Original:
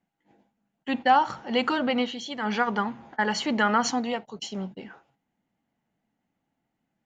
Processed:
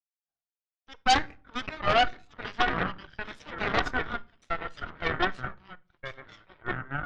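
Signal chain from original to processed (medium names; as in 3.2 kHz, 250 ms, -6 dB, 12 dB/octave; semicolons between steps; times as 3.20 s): ever faster or slower copies 487 ms, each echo -4 st, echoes 3; vowel filter a; Chebyshev shaper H 5 -14 dB, 7 -11 dB, 8 -8 dB, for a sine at -14 dBFS; on a send: reverberation RT60 0.45 s, pre-delay 3 ms, DRR 18 dB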